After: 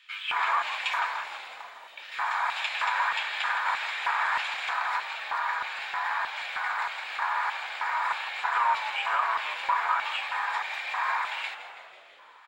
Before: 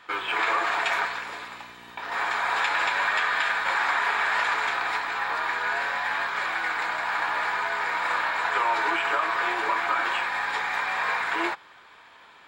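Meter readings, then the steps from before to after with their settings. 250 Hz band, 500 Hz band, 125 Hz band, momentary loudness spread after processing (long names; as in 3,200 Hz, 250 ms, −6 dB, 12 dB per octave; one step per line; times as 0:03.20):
below −20 dB, −10.0 dB, can't be measured, 8 LU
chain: auto-filter high-pass square 1.6 Hz 950–2,700 Hz
echo with shifted repeats 164 ms, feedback 61%, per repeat −64 Hz, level −11.5 dB
level −6.5 dB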